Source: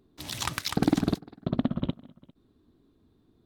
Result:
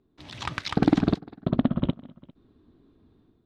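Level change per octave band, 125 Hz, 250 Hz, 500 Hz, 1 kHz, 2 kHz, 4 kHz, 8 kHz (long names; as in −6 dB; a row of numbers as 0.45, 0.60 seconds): +3.5 dB, +3.5 dB, +3.5 dB, +2.5 dB, +1.5 dB, −2.0 dB, below −10 dB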